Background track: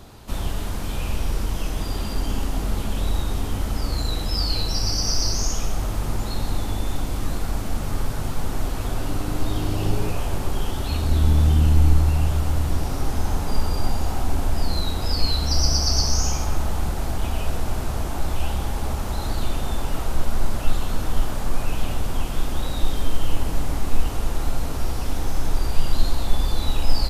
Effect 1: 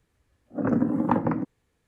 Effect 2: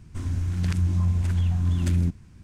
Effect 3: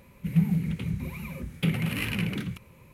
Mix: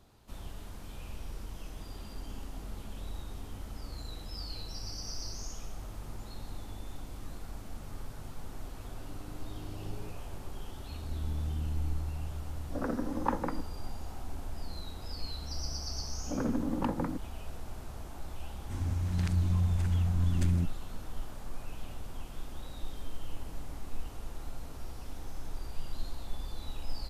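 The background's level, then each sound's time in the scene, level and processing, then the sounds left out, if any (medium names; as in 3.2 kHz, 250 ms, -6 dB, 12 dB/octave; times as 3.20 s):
background track -17.5 dB
12.17 s: add 1 -4.5 dB + high-pass 520 Hz 6 dB/octave
15.73 s: add 1 -8 dB + hard clipper -16 dBFS
18.55 s: add 2 -5.5 dB
not used: 3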